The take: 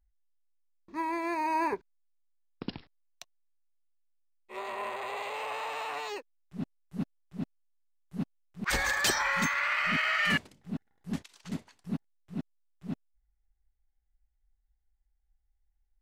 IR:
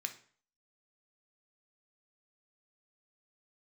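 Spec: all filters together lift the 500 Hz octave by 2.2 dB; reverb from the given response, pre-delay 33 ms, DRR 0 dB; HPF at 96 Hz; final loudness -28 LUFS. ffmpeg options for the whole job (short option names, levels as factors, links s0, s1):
-filter_complex "[0:a]highpass=96,equalizer=f=500:t=o:g=3,asplit=2[s0][s1];[1:a]atrim=start_sample=2205,adelay=33[s2];[s1][s2]afir=irnorm=-1:irlink=0,volume=1.06[s3];[s0][s3]amix=inputs=2:normalize=0,volume=1.12"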